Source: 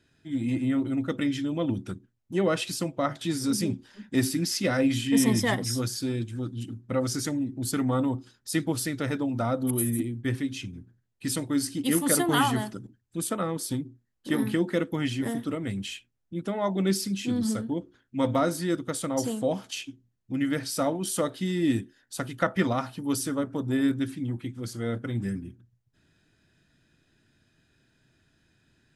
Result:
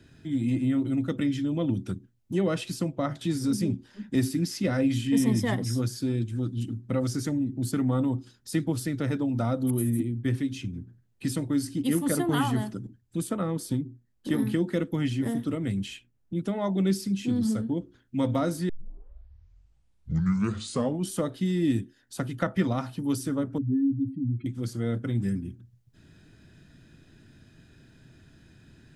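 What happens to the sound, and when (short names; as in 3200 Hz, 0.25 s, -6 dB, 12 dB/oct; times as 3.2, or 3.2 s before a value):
18.69 tape start 2.41 s
23.58–24.46 spectral contrast raised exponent 2.5
whole clip: low shelf 360 Hz +9.5 dB; three-band squash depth 40%; gain -5.5 dB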